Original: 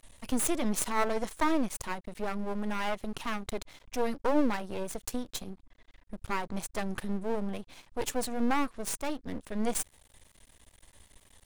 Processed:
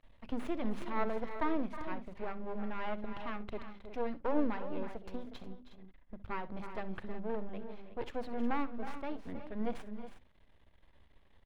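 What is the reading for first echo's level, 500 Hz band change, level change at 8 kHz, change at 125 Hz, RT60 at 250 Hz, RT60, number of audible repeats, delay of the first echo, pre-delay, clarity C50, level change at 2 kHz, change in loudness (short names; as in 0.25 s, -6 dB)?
-17.0 dB, -5.5 dB, under -30 dB, -6.0 dB, none, none, 3, 64 ms, none, none, -7.5 dB, -6.5 dB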